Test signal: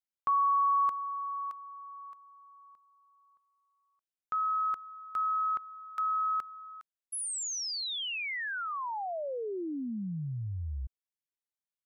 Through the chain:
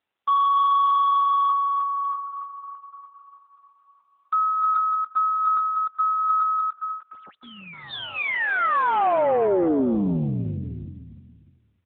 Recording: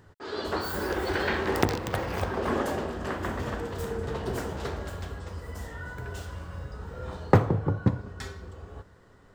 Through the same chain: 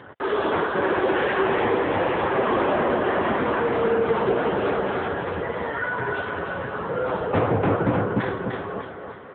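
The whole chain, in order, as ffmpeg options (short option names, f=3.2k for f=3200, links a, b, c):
-filter_complex "[0:a]aecho=1:1:301|602|903|1204:0.473|0.18|0.0683|0.026,asplit=2[a][b];[b]highpass=f=720:p=1,volume=36dB,asoftclip=type=tanh:threshold=-3dB[c];[a][c]amix=inputs=2:normalize=0,lowpass=f=1.1k:p=1,volume=-6dB,volume=-5.5dB" -ar 8000 -c:a libopencore_amrnb -b:a 6700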